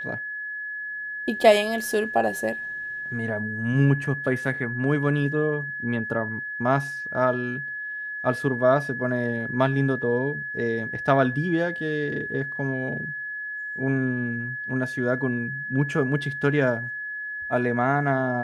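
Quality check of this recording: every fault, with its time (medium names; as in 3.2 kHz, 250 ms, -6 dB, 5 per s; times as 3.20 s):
whine 1.7 kHz -30 dBFS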